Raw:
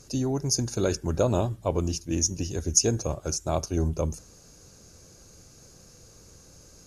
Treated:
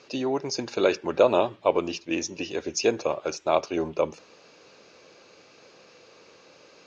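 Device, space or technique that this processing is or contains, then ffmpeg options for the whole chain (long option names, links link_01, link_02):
phone earpiece: -af "highpass=480,equalizer=frequency=730:width_type=q:width=4:gain=-3,equalizer=frequency=1500:width_type=q:width=4:gain=-4,equalizer=frequency=2500:width_type=q:width=4:gain=5,lowpass=frequency=3800:width=0.5412,lowpass=frequency=3800:width=1.3066,volume=9dB"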